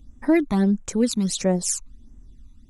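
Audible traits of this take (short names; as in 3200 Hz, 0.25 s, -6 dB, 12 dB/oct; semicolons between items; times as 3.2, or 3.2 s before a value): phasing stages 12, 1.5 Hz, lowest notch 520–4300 Hz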